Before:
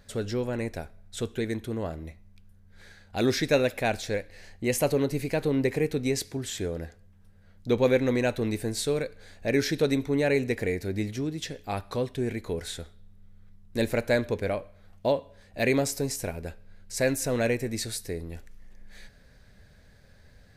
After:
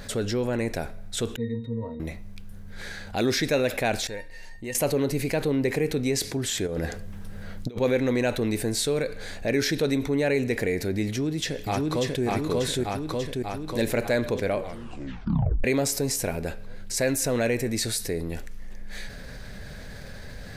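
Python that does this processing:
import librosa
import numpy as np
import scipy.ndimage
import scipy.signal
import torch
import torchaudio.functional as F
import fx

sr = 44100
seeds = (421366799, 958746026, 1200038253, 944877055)

y = fx.octave_resonator(x, sr, note='A#', decay_s=0.17, at=(1.36, 2.0))
y = fx.comb_fb(y, sr, f0_hz=920.0, decay_s=0.15, harmonics='all', damping=0.0, mix_pct=90, at=(4.07, 4.75))
y = fx.over_compress(y, sr, threshold_db=-36.0, ratio=-0.5, at=(6.66, 7.79), fade=0.02)
y = fx.echo_throw(y, sr, start_s=11.07, length_s=1.17, ms=590, feedback_pct=55, wet_db=-0.5)
y = fx.edit(y, sr, fx.tape_stop(start_s=14.59, length_s=1.05), tone=tone)
y = fx.peak_eq(y, sr, hz=81.0, db=-5.5, octaves=0.68)
y = fx.env_flatten(y, sr, amount_pct=50)
y = F.gain(torch.from_numpy(y), -2.0).numpy()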